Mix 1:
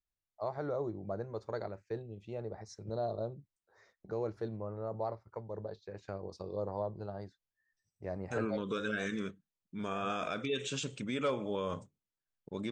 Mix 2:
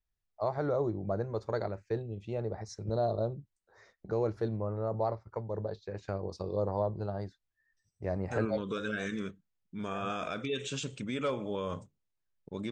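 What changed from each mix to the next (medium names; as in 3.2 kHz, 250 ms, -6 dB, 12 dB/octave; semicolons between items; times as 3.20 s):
first voice +5.0 dB; master: add bass shelf 86 Hz +7.5 dB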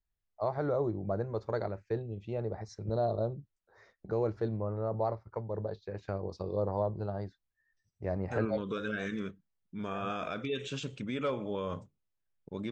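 master: add distance through air 94 m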